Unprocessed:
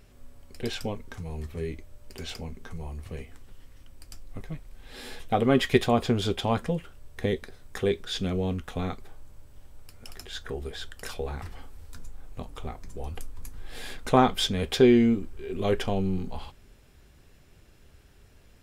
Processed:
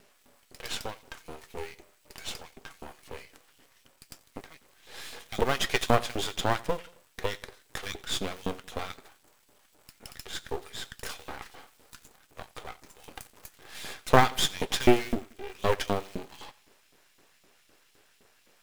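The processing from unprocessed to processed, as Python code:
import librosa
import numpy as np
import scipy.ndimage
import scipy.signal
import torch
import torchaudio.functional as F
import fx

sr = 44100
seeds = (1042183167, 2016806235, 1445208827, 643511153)

p1 = fx.quant_float(x, sr, bits=2)
p2 = x + (p1 * librosa.db_to_amplitude(-5.0))
p3 = fx.filter_lfo_highpass(p2, sr, shape='saw_up', hz=3.9, low_hz=230.0, high_hz=3600.0, q=1.1)
p4 = p3 + fx.echo_feedback(p3, sr, ms=89, feedback_pct=45, wet_db=-21.0, dry=0)
p5 = np.maximum(p4, 0.0)
y = p5 * librosa.db_to_amplitude(1.0)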